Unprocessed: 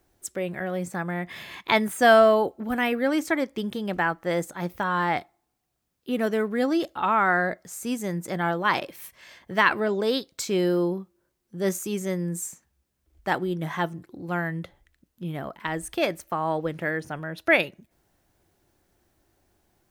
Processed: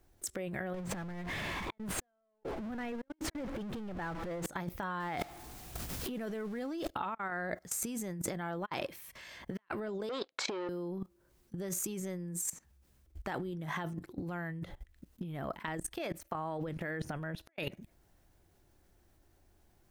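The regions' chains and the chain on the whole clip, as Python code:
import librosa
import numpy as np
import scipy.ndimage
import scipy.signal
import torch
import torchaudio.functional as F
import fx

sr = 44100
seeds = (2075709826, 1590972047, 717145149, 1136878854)

y = fx.chain(x, sr, fx.zero_step(step_db=-21.5),
    fx.lowpass(hz=1400.0, slope=6), at=(0.74, 4.46))
y = fx.chain(y, sr, fx.zero_step(step_db=-38.0),
    fx.pre_swell(db_per_s=46.0), at=(5.0, 6.88))
y = fx.chain(y, sr, fx.leveller(passes=3),
    fx.highpass(hz=590.0, slope=12),
    fx.spacing_loss(db_at_10k=32), at=(10.09, 10.69))
y = fx.chain(y, sr, fx.low_shelf(hz=82.0, db=-5.5),
    fx.level_steps(step_db=18), at=(15.59, 16.35))
y = fx.level_steps(y, sr, step_db=20)
y = fx.low_shelf(y, sr, hz=82.0, db=11.0)
y = fx.over_compress(y, sr, threshold_db=-42.0, ratio=-0.5)
y = y * librosa.db_to_amplitude(1.0)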